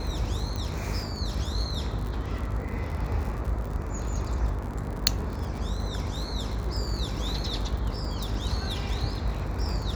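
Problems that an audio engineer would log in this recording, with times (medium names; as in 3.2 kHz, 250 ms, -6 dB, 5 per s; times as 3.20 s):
buzz 50 Hz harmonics 16 -34 dBFS
crackle 58 per s -33 dBFS
0.56 s: pop -19 dBFS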